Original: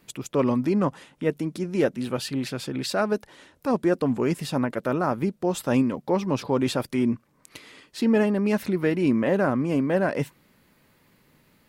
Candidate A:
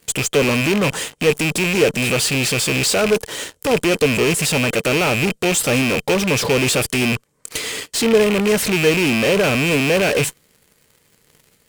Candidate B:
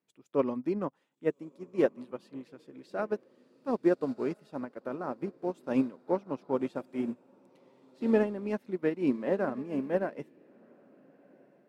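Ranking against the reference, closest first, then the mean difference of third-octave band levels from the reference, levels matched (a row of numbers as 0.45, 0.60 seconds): B, A; 7.5, 11.5 decibels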